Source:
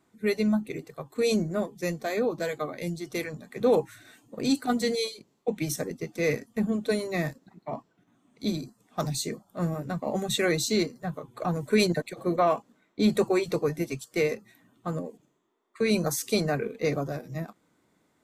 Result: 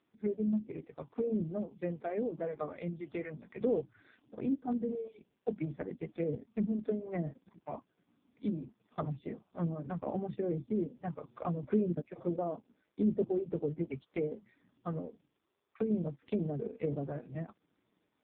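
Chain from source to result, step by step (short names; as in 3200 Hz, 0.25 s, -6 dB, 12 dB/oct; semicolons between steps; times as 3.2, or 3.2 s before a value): treble ducked by the level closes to 460 Hz, closed at -23 dBFS; gain -5 dB; AMR-NB 5.15 kbps 8000 Hz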